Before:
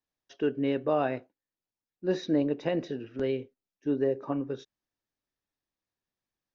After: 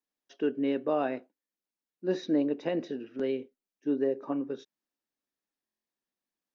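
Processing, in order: resonant low shelf 150 Hz -11.5 dB, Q 1.5; buffer glitch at 5.64 s, samples 1024; trim -2.5 dB

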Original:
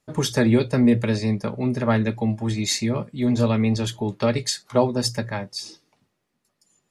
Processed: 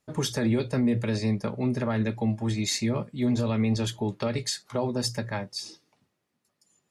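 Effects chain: peak limiter -14 dBFS, peak gain reduction 8.5 dB; Chebyshev shaper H 2 -33 dB, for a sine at -14 dBFS; trim -3 dB

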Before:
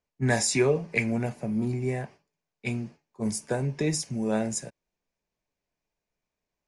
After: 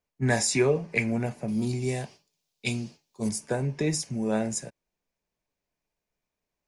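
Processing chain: 1.48–3.29 s: resonant high shelf 2.6 kHz +10.5 dB, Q 1.5

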